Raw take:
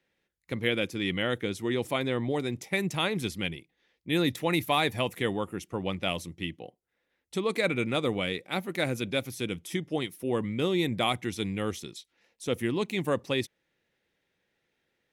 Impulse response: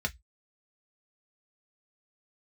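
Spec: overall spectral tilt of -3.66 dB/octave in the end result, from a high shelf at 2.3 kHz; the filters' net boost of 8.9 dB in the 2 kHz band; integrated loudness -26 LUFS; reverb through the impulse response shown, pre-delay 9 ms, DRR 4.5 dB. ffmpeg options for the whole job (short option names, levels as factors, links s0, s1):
-filter_complex "[0:a]equalizer=f=2000:t=o:g=6,highshelf=f=2300:g=8.5,asplit=2[s0][s1];[1:a]atrim=start_sample=2205,adelay=9[s2];[s1][s2]afir=irnorm=-1:irlink=0,volume=0.316[s3];[s0][s3]amix=inputs=2:normalize=0,volume=0.794"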